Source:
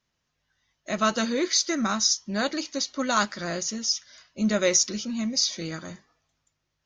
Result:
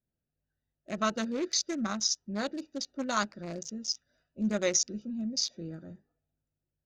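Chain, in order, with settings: Wiener smoothing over 41 samples; gain -5 dB

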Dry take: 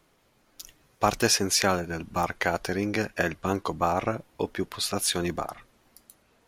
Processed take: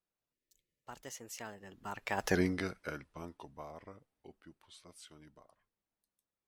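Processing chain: Doppler pass-by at 2.35, 49 m/s, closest 4.1 m; spectral delete 0.33–0.84, 620–1700 Hz

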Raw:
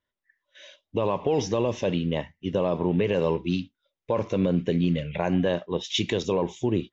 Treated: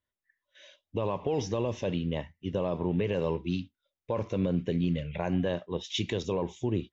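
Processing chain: bell 77 Hz +6.5 dB 1.4 oct; gain -6 dB

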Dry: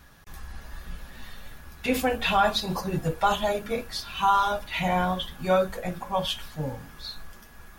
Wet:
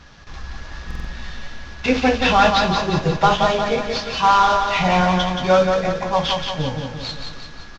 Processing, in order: CVSD 32 kbps; feedback echo 0.176 s, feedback 52%, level -5 dB; stuck buffer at 0.86, samples 2048, times 3; gain +7.5 dB

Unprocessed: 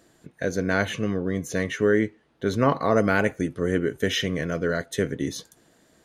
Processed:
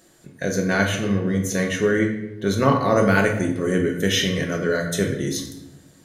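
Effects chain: high shelf 4200 Hz +8.5 dB; shoebox room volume 340 m³, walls mixed, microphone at 1 m

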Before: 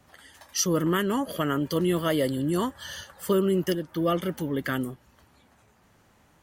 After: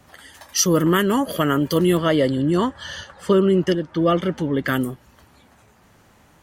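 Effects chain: 1.97–4.68 air absorption 86 m; gain +7 dB

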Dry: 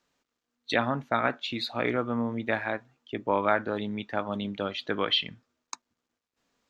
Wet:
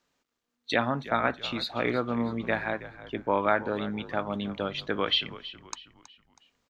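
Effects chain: frequency-shifting echo 0.322 s, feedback 41%, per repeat -60 Hz, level -15.5 dB

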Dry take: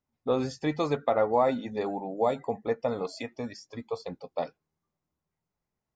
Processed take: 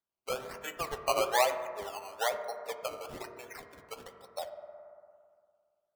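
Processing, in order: per-bin expansion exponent 1.5; HPF 590 Hz 24 dB/oct; decimation with a swept rate 17×, swing 100% 1.1 Hz; on a send at -6 dB: reverb RT60 2.0 s, pre-delay 3 ms; on the sum: mismatched tape noise reduction encoder only

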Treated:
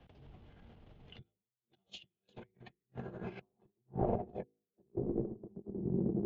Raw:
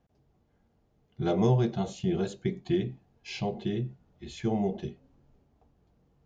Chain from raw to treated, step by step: transient shaper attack -10 dB, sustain +8 dB; bell 5500 Hz -4.5 dB 1.9 oct; diffused feedback echo 0.912 s, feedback 52%, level -15 dB; low-pass sweep 3100 Hz -> 320 Hz, 2.1–5.4; negative-ratio compressor -49 dBFS, ratio -0.5; de-hum 53.48 Hz, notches 9; transient shaper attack +5 dB, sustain -9 dB; three-band expander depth 40%; gain +2 dB

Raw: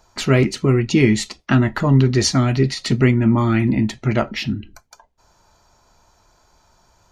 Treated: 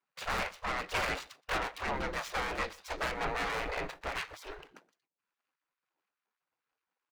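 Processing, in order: median filter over 41 samples; LPF 3300 Hz 6 dB/oct; spectral gate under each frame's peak -25 dB weak; gate with hold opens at -54 dBFS; in parallel at -2 dB: compressor, threshold -47 dBFS, peak gain reduction 18 dB; on the sum: soft clip -32.5 dBFS, distortion -9 dB; echo 0.122 s -23 dB; noise-modulated level, depth 50%; gain +7 dB

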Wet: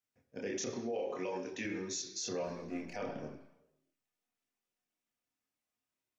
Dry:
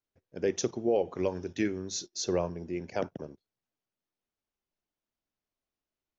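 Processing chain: 2.44–2.94 half-wave gain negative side -7 dB; reverb RT60 1.0 s, pre-delay 3 ms, DRR 3.5 dB; chorus voices 6, 0.47 Hz, delay 28 ms, depth 2.1 ms; 0.79–1.65 HPF 280 Hz 6 dB/oct; limiter -33 dBFS, peak gain reduction 10.5 dB; gain +3.5 dB

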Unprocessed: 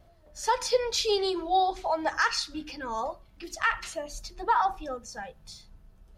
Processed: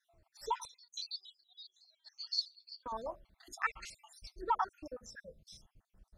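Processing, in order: random spectral dropouts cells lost 61%; 0.65–2.86 ladder band-pass 4600 Hz, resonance 85%; gain -6 dB

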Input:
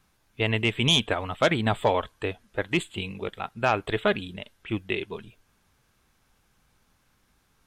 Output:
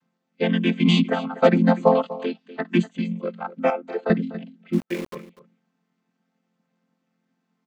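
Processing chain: chord vocoder major triad, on F3; spectral noise reduction 10 dB; 1.95–2.61 band shelf 3600 Hz +13.5 dB 1.3 oct; 3.7–4.1 ladder high-pass 330 Hz, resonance 45%; 4.73–5.15 sample gate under -40.5 dBFS; echo 0.245 s -16 dB; gain +6.5 dB

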